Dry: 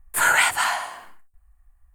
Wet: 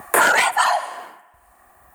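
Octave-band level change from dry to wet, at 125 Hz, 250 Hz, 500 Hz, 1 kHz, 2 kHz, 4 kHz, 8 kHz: n/a, +11.0 dB, +11.5 dB, +6.0 dB, +2.0 dB, +1.5 dB, +0.5 dB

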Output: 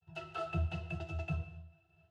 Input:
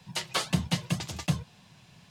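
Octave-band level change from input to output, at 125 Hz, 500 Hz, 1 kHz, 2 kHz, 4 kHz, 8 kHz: -6.5 dB, -3.0 dB, -7.0 dB, -9.0 dB, -21.5 dB, under -25 dB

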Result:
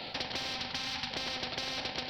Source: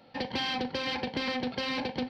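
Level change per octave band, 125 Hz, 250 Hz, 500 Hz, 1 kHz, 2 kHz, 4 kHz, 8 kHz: -4.0 dB, -11.5 dB, -8.5 dB, -5.0 dB, -3.5 dB, 0.0 dB, n/a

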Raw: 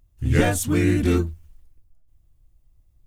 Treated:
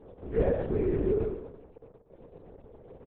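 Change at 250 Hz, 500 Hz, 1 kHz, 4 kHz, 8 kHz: -11.0 dB, -1.5 dB, -11.5 dB, under -25 dB, under -40 dB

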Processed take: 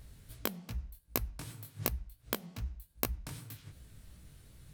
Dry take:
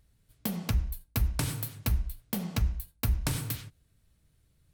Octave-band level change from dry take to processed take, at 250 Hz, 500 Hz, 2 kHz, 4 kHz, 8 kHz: -8.5, +0.5, -4.5, -5.5, -6.0 dB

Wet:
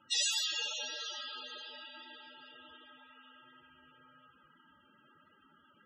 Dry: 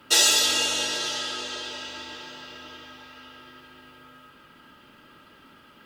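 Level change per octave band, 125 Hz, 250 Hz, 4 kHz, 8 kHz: -22.0, -20.5, -12.0, -14.5 dB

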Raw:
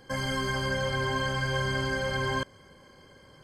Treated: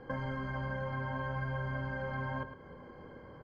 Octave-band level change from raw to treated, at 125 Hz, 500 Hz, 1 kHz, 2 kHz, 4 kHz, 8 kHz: -4.5 dB, -9.0 dB, -7.0 dB, -10.0 dB, -22.0 dB, under -30 dB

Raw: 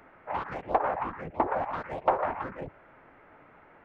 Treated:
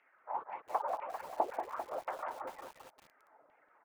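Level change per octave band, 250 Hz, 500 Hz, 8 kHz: -15.5 dB, -9.0 dB, n/a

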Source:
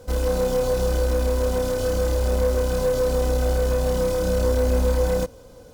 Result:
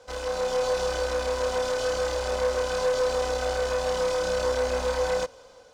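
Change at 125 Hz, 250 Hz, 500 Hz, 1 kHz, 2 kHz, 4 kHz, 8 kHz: -15.5, -13.0, -3.0, +2.0, +3.0, +2.5, -1.5 dB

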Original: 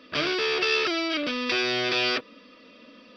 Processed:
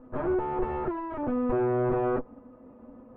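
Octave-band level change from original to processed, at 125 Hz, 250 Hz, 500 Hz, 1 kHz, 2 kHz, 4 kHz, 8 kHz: +9.5 dB, +2.0 dB, +1.0 dB, +0.5 dB, -18.0 dB, under -40 dB, n/a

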